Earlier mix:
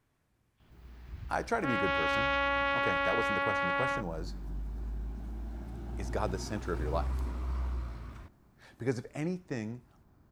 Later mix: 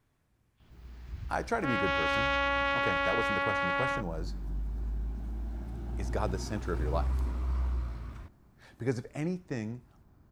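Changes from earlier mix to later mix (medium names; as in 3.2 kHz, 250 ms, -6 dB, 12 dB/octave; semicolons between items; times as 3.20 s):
second sound: remove distance through air 92 m; master: add bass shelf 140 Hz +4 dB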